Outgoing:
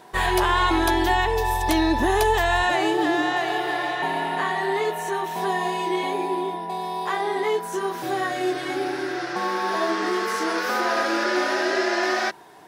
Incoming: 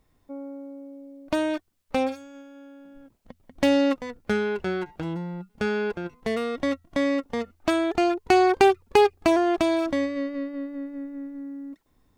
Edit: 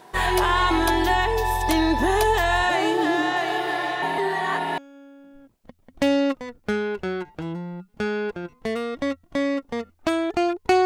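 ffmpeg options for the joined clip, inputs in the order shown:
-filter_complex "[0:a]apad=whole_dur=10.85,atrim=end=10.85,asplit=2[s0][s1];[s0]atrim=end=4.182[s2];[s1]atrim=start=4.178:end=4.782,asetpts=PTS-STARTPTS,areverse[s3];[1:a]atrim=start=2.388:end=8.46[s4];[s2][s3]acrossfade=d=0.004:c1=hsin:c2=hsin[s5];[s5][s4]acrossfade=d=0.004:c1=hsin:c2=hsin"

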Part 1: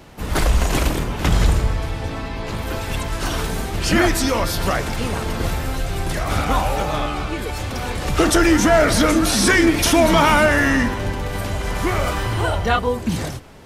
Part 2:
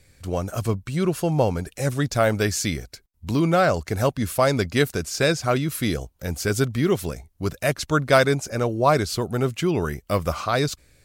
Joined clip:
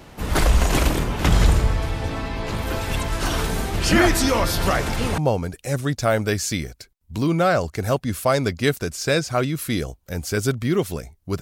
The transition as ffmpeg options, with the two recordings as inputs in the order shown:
-filter_complex "[0:a]apad=whole_dur=11.41,atrim=end=11.41,atrim=end=5.182[s0];[1:a]atrim=start=1.308:end=7.54[s1];[s0][s1]acrossfade=d=0.004:c1=hsin:c2=hsin"

